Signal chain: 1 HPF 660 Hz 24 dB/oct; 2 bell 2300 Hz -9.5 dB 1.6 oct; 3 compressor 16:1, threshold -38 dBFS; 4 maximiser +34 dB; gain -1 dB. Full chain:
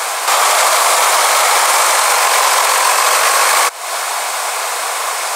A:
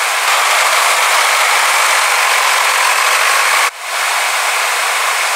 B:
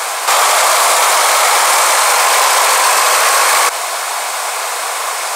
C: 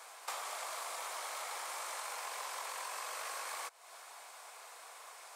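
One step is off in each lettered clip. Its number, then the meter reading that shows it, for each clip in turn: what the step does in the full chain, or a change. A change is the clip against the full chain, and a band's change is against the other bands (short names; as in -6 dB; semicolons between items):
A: 2, 2 kHz band +6.0 dB; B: 3, mean gain reduction 9.5 dB; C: 4, crest factor change +7.5 dB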